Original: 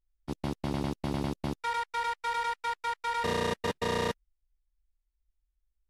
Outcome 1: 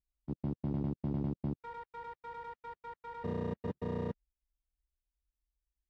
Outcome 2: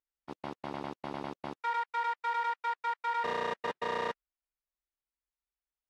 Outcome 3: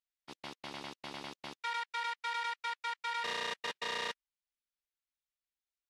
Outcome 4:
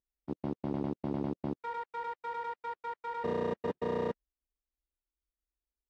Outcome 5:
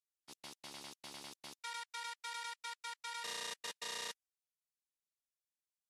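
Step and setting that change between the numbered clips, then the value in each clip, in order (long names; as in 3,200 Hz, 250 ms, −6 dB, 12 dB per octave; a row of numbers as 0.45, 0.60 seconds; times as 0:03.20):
resonant band-pass, frequency: 140, 1,100, 3,000, 340, 7,900 Hertz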